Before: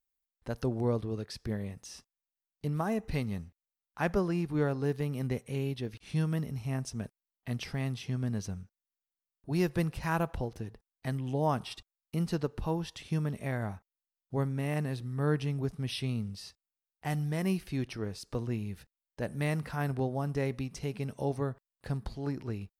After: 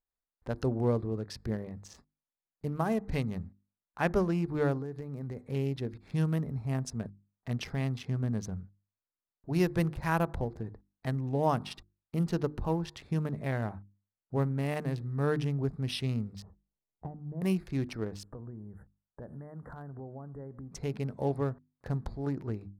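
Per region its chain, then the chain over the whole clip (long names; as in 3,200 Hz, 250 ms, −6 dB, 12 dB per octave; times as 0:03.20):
0:04.78–0:05.47: downward compressor 5 to 1, threshold −36 dBFS + high-shelf EQ 4,800 Hz +3.5 dB
0:16.42–0:17.42: low-pass filter 1,100 Hz 24 dB per octave + low-shelf EQ 370 Hz +10.5 dB + downward compressor 20 to 1, threshold −34 dBFS
0:18.23–0:20.72: inverse Chebyshev band-stop filter 2,500–5,700 Hz + downward compressor, threshold −42 dBFS
whole clip: adaptive Wiener filter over 15 samples; mains-hum notches 50/100/150/200/250/300/350 Hz; level +2 dB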